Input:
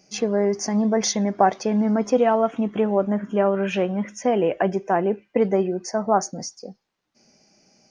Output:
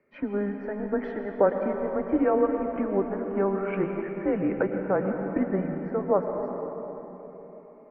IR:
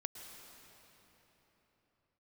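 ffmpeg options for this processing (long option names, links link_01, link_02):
-filter_complex "[1:a]atrim=start_sample=2205[link_01];[0:a][link_01]afir=irnorm=-1:irlink=0,highpass=frequency=440:width_type=q:width=0.5412,highpass=frequency=440:width_type=q:width=1.307,lowpass=frequency=2300:width_type=q:width=0.5176,lowpass=frequency=2300:width_type=q:width=0.7071,lowpass=frequency=2300:width_type=q:width=1.932,afreqshift=-200"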